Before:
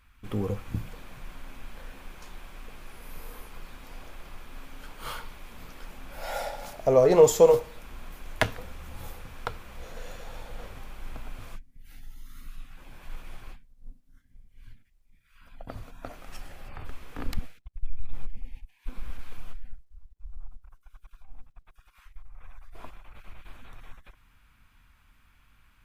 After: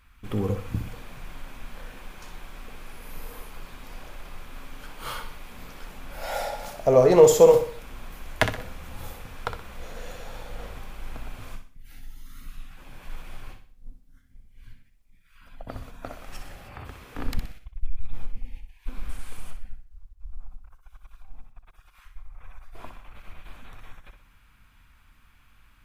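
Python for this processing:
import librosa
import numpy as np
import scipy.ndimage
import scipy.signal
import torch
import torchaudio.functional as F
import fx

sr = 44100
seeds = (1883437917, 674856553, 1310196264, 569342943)

y = fx.highpass(x, sr, hz=51.0, slope=12, at=(16.55, 17.15))
y = fx.peak_eq(y, sr, hz=9000.0, db=13.5, octaves=0.81, at=(19.09, 19.51))
y = fx.echo_feedback(y, sr, ms=62, feedback_pct=39, wet_db=-9.0)
y = y * 10.0 ** (2.5 / 20.0)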